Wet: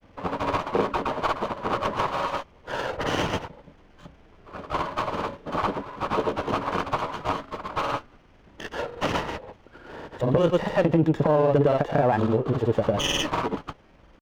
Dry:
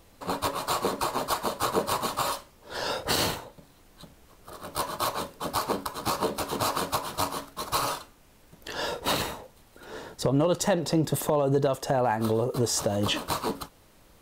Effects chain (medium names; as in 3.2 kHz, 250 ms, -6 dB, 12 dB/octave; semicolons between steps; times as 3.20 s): Chebyshev low-pass 3.3 kHz, order 5; granulator, pitch spread up and down by 0 st; sliding maximum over 5 samples; trim +5 dB